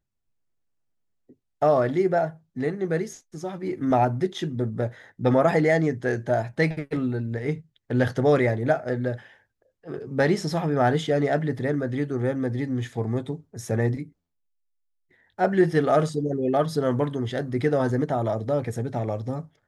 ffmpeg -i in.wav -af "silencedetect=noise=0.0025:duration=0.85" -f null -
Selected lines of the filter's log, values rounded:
silence_start: 0.00
silence_end: 1.29 | silence_duration: 1.29
silence_start: 14.12
silence_end: 15.11 | silence_duration: 0.99